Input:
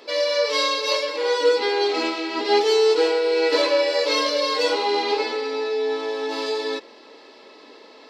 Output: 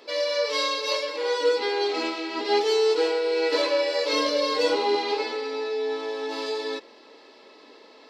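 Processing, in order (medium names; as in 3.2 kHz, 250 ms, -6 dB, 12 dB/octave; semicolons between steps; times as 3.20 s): 4.13–4.96 s: bass shelf 340 Hz +10 dB; trim -4 dB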